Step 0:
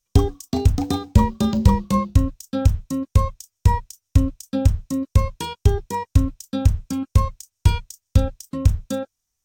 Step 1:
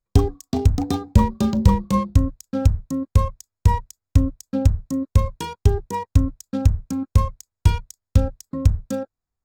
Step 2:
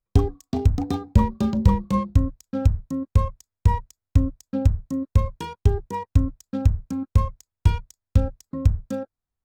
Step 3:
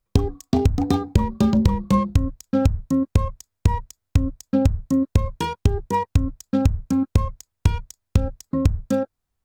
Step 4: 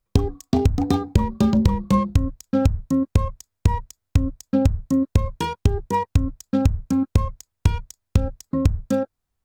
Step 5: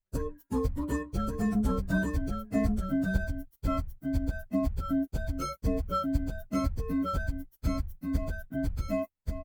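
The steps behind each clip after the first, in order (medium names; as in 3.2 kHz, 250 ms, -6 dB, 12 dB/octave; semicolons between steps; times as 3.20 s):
local Wiener filter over 15 samples
tone controls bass +1 dB, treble -6 dB; trim -3 dB
compression 10:1, threshold -21 dBFS, peak gain reduction 13 dB; trim +8 dB
no audible change
frequency axis rescaled in octaves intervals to 125%; delay 1134 ms -3.5 dB; trim -8 dB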